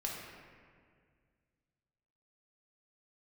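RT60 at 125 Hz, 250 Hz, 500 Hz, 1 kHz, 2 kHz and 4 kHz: 2.8 s, 2.4 s, 2.1 s, 1.8 s, 1.8 s, 1.2 s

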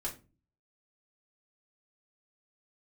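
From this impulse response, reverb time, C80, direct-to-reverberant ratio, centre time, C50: 0.30 s, 18.5 dB, -5.0 dB, 15 ms, 12.5 dB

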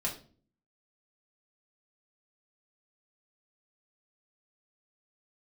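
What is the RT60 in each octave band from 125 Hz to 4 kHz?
0.70 s, 0.70 s, 0.50 s, 0.35 s, 0.35 s, 0.35 s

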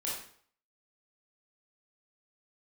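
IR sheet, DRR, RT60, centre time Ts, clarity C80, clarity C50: -6.0 dB, 0.55 s, 49 ms, 6.5 dB, 1.5 dB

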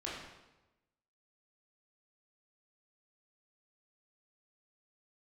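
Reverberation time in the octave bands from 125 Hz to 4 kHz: 1.1 s, 1.1 s, 1.1 s, 1.0 s, 0.90 s, 0.85 s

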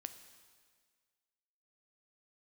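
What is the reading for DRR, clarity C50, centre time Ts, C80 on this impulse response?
9.0 dB, 11.0 dB, 15 ms, 12.0 dB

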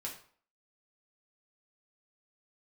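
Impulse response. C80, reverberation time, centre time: 12.0 dB, 0.50 s, 22 ms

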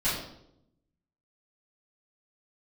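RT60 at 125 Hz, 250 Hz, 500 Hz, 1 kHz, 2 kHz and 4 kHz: 1.1 s, 1.1 s, 0.90 s, 0.65 s, 0.55 s, 0.60 s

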